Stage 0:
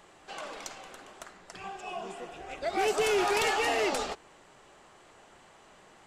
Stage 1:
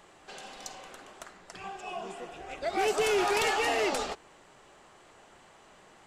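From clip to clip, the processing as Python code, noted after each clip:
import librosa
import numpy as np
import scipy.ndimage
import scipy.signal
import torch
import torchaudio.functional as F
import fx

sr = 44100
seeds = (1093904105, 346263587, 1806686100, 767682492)

y = fx.spec_repair(x, sr, seeds[0], start_s=0.33, length_s=0.45, low_hz=280.0, high_hz=3400.0, source='both')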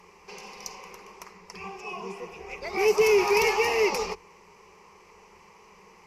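y = fx.ripple_eq(x, sr, per_octave=0.82, db=16)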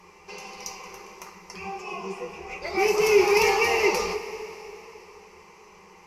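y = fx.rev_double_slope(x, sr, seeds[1], early_s=0.24, late_s=3.4, knee_db=-18, drr_db=0.5)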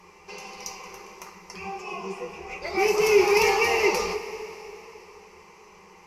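y = x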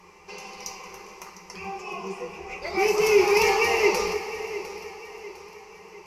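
y = fx.echo_feedback(x, sr, ms=704, feedback_pct=46, wet_db=-15.0)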